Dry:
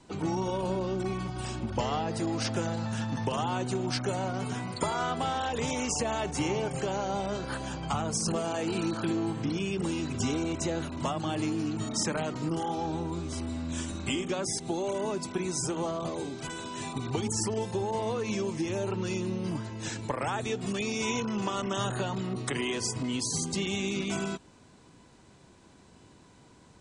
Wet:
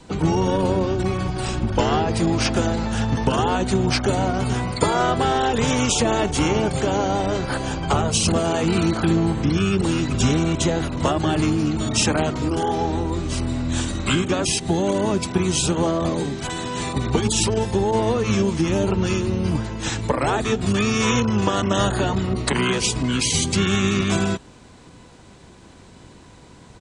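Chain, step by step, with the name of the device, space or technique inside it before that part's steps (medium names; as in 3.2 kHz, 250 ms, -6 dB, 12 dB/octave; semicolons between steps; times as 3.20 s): octave pedal (harmony voices -12 st -3 dB); trim +9 dB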